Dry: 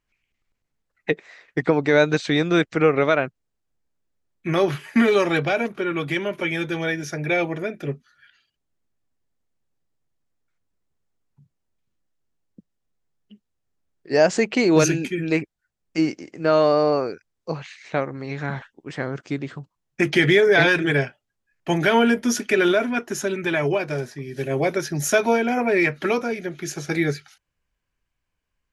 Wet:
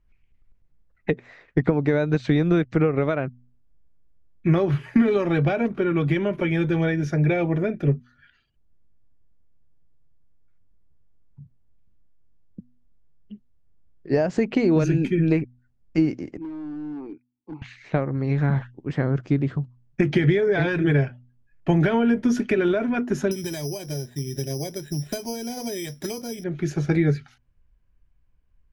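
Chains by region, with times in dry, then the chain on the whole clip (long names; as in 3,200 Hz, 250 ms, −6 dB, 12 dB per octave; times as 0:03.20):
0:16.37–0:17.62: downward compressor 8 to 1, threshold −20 dBFS + formant filter u + hard clipping −35.5 dBFS
0:23.31–0:26.44: parametric band 1,300 Hz −11 dB 0.33 octaves + bad sample-rate conversion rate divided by 8×, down filtered, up zero stuff
whole clip: downward compressor, threshold −21 dBFS; RIAA equalisation playback; hum removal 122.9 Hz, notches 2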